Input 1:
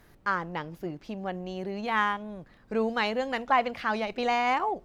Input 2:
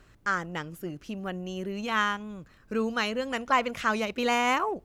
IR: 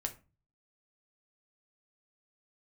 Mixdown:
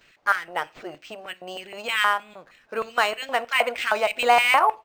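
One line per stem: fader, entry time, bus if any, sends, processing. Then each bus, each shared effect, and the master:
-5.0 dB, 0.00 s, no send, step gate "x.xxxx.xx.xx..x" 135 bpm; compressor, threshold -34 dBFS, peak gain reduction 13.5 dB; tone controls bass -9 dB, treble +11 dB
+2.5 dB, 9.2 ms, send -6.5 dB, low shelf 140 Hz +9.5 dB; LFO high-pass square 3.2 Hz 700–2400 Hz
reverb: on, RT60 0.30 s, pre-delay 6 ms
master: decimation joined by straight lines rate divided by 4×

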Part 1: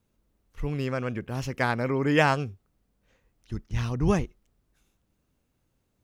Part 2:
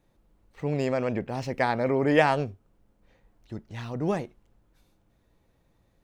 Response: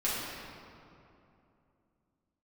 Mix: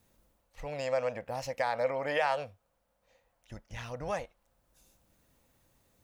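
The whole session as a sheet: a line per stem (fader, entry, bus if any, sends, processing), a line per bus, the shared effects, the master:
+2.0 dB, 0.00 s, no send, high shelf 4900 Hz +9.5 dB; compressor, threshold -31 dBFS, peak gain reduction 15 dB; auto duck -12 dB, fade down 0.30 s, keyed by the second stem
-1.5 dB, 0.00 s, polarity flipped, no send, elliptic high-pass 500 Hz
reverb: off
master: limiter -19 dBFS, peak gain reduction 8.5 dB

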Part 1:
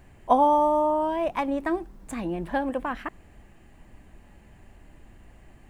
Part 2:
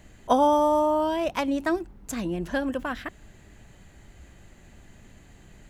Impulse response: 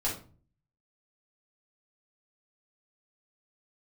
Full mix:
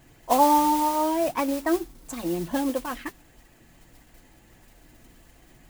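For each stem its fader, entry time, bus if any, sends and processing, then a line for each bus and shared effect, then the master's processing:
-1.5 dB, 0.00 s, no send, modulation noise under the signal 11 dB
-1.0 dB, 0.00 s, no send, tape flanging out of phase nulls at 1.6 Hz, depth 2.3 ms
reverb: off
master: bell 74 Hz -9.5 dB 0.68 oct; notch comb 200 Hz

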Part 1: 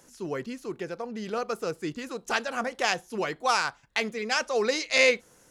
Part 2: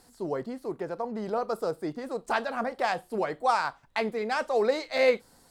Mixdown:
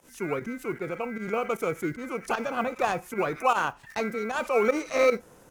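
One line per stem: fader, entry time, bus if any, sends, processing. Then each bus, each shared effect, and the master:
+1.5 dB, 0.00 s, no send, LPF 1400 Hz 24 dB/oct; transient shaper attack +2 dB, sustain +6 dB; modulation noise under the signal 34 dB
-5.5 dB, 0.00 s, no send, EQ curve 640 Hz 0 dB, 1400 Hz -6 dB, 6500 Hz +9 dB; ring modulator 1800 Hz; backwards sustainer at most 130 dB/s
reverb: off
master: pump 153 bpm, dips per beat 1, -12 dB, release 73 ms

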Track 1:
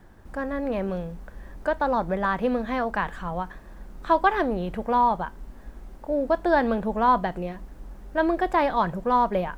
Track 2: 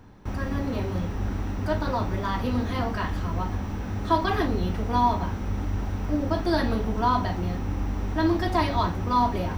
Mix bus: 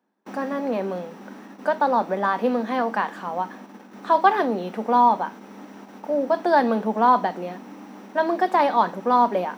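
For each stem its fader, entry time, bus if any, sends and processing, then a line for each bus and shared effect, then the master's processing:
+0.5 dB, 0.00 s, no send, bell 850 Hz +5 dB 0.78 oct
+3.0 dB, 0.00 s, no send, auto duck -8 dB, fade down 0.80 s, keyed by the first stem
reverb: off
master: gate -34 dBFS, range -24 dB; Chebyshev high-pass 210 Hz, order 4

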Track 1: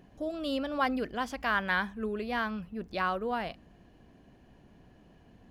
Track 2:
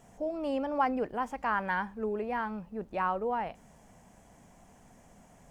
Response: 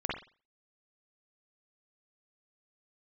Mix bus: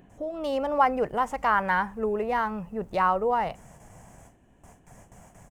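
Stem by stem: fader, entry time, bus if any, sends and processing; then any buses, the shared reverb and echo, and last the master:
+3.0 dB, 0.00 s, no send, Wiener smoothing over 9 samples; high shelf 3900 Hz +9 dB; compressor, threshold -36 dBFS, peak gain reduction 13 dB; auto duck -14 dB, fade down 0.80 s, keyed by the second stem
-1.0 dB, 1.7 ms, polarity flipped, no send, gate with hold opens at -47 dBFS; graphic EQ 125/250/4000/8000 Hz +6/-11/-8/+3 dB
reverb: off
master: AGC gain up to 9 dB

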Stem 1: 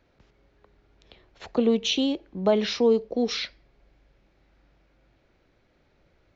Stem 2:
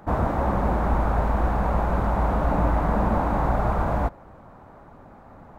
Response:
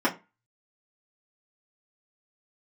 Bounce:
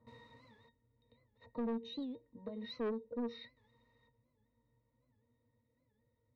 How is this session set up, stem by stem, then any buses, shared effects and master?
-3.0 dB, 0.00 s, no send, compressor 4:1, threshold -23 dBFS, peak gain reduction 7 dB
-10.0 dB, 0.00 s, muted 0.69–3.57, no send, wrapped overs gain 26 dB; auto duck -18 dB, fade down 1.10 s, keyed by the first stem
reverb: off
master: octave resonator A#, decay 0.12 s; soft clip -33 dBFS, distortion -9 dB; record warp 78 rpm, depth 160 cents

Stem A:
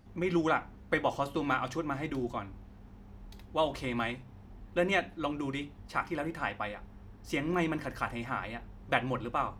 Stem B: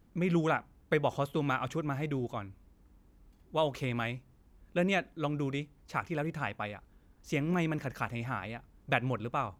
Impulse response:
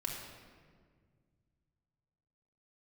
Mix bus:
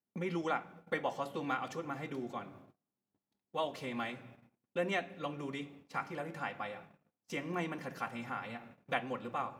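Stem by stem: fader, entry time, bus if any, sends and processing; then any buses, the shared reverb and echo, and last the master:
-7.0 dB, 0.00 s, send -21.5 dB, dry
+2.0 dB, 0.00 s, send -13.5 dB, compressor 16:1, threshold -35 dBFS, peak gain reduction 13.5 dB; auto duck -11 dB, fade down 0.40 s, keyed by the first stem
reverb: on, RT60 1.8 s, pre-delay 3 ms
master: gate -50 dBFS, range -32 dB; HPF 190 Hz 12 dB/oct; bell 710 Hz +2 dB

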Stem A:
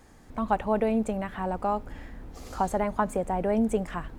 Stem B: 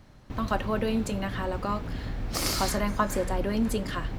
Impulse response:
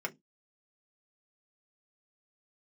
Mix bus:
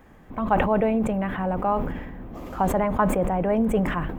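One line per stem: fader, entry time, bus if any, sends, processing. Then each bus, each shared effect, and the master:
+2.0 dB, 0.00 s, send -16.5 dB, band shelf 6600 Hz -12.5 dB
-3.5 dB, 0.00 s, no send, hard clip -27 dBFS, distortion -9 dB; Chebyshev band-pass 130–1100 Hz, order 4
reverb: on, pre-delay 3 ms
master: bell 180 Hz +2.5 dB 1.5 oct; sustainer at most 44 dB/s

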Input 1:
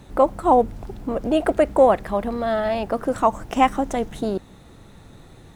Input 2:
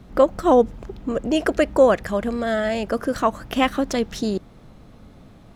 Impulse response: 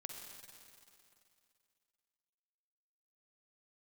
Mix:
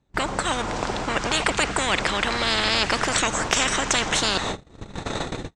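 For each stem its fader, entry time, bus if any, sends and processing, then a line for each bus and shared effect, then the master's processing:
-3.0 dB, 0.00 s, send -17.5 dB, de-esser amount 75%; steep low-pass 8200 Hz 48 dB/oct; AGC gain up to 12.5 dB
-18.0 dB, 6.6 ms, send -12 dB, treble ducked by the level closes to 1400 Hz, closed at -12 dBFS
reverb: on, RT60 2.6 s, pre-delay 43 ms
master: gate -33 dBFS, range -43 dB; spectral compressor 10:1

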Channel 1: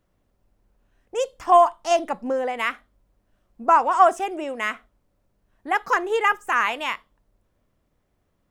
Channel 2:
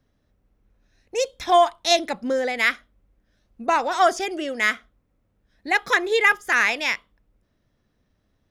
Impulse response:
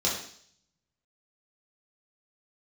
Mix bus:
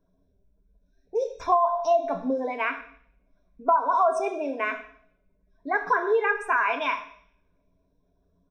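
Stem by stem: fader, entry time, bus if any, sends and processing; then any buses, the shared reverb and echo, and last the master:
-3.0 dB, 0.00 s, send -14.5 dB, spectral gate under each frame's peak -20 dB strong
-11.5 dB, 1.6 ms, send -15.5 dB, compressor, threshold -24 dBFS, peak gain reduction 11.5 dB; limiter -20 dBFS, peak gain reduction 7 dB; resonator 53 Hz, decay 0.23 s, harmonics all, mix 90%; auto duck -11 dB, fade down 0.50 s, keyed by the first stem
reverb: on, RT60 0.60 s, pre-delay 3 ms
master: ripple EQ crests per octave 1.6, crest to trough 14 dB; compressor 6:1, threshold -18 dBFS, peak gain reduction 10.5 dB

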